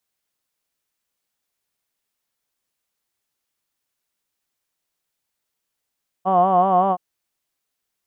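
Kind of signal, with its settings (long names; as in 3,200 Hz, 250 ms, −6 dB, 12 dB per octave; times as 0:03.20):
vowel from formants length 0.72 s, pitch 183 Hz, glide +0.5 semitones, vibrato depth 0.8 semitones, F1 700 Hz, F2 1,100 Hz, F3 3,000 Hz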